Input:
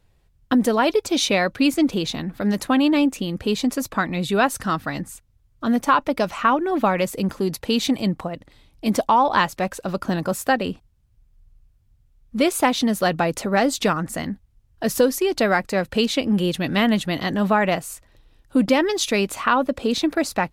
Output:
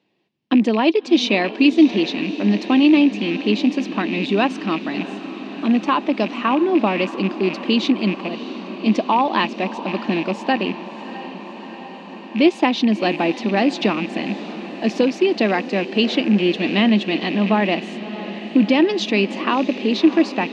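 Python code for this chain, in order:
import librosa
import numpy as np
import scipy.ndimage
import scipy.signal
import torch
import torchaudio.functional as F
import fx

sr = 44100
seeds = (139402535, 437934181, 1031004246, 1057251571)

y = fx.rattle_buzz(x, sr, strikes_db=-30.0, level_db=-21.0)
y = fx.cabinet(y, sr, low_hz=200.0, low_slope=24, high_hz=4900.0, hz=(210.0, 330.0, 510.0, 1400.0, 2700.0), db=(6, 9, -3, -10, 6))
y = fx.echo_diffused(y, sr, ms=642, feedback_pct=74, wet_db=-14)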